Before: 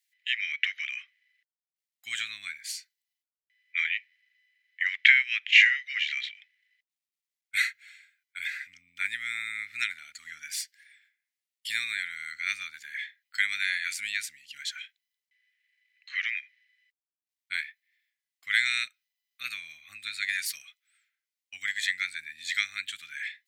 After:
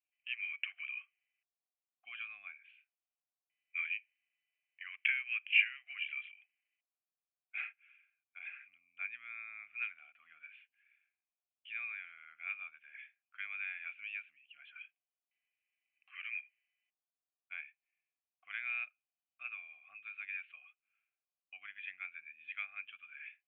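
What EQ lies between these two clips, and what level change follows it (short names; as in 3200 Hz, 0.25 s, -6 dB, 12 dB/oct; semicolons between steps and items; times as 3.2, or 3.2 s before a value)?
vowel filter a; steep low-pass 3100 Hz 72 dB/oct; air absorption 150 m; +5.5 dB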